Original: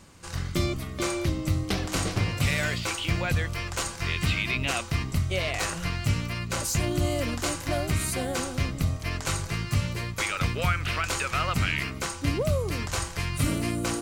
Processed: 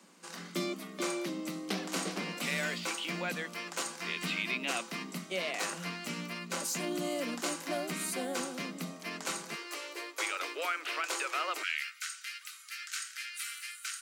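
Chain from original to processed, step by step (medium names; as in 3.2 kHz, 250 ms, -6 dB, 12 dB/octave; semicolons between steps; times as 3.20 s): steep high-pass 170 Hz 96 dB/octave, from 9.54 s 300 Hz, from 11.62 s 1.3 kHz; trim -5.5 dB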